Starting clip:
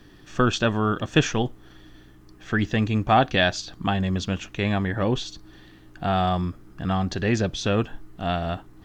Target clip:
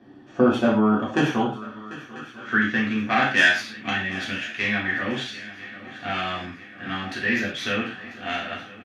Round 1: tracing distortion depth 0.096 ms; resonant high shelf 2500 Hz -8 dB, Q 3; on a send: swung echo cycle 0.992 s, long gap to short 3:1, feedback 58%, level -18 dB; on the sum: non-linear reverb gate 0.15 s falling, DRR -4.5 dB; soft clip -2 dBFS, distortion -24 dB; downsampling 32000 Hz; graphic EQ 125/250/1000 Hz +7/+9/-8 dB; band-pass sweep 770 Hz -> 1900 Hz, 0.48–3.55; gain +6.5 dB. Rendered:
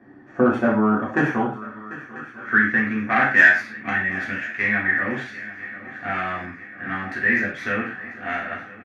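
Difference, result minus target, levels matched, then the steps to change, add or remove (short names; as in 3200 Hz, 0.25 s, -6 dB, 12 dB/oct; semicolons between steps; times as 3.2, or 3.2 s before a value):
4000 Hz band -15.0 dB
remove: resonant high shelf 2500 Hz -8 dB, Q 3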